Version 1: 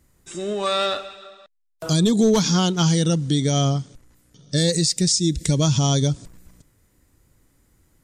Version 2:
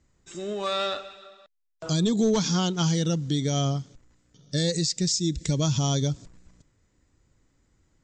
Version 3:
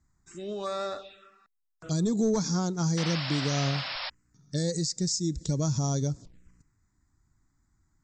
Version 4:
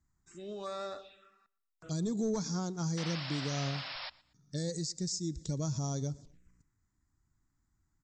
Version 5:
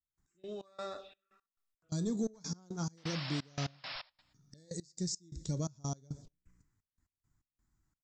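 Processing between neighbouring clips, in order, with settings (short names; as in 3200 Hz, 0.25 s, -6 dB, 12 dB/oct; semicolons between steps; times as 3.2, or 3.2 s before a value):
steep low-pass 7900 Hz 96 dB/oct; gain -5.5 dB
envelope phaser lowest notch 490 Hz, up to 3000 Hz, full sweep at -25 dBFS; painted sound noise, 2.97–4.1, 520–5500 Hz -32 dBFS; gain -3 dB
feedback echo 0.118 s, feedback 32%, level -23 dB; gain -7 dB
flange 0.26 Hz, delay 5.4 ms, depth 8.5 ms, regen -70%; step gate "..x..xx..xxxx" 172 bpm -24 dB; gain +3.5 dB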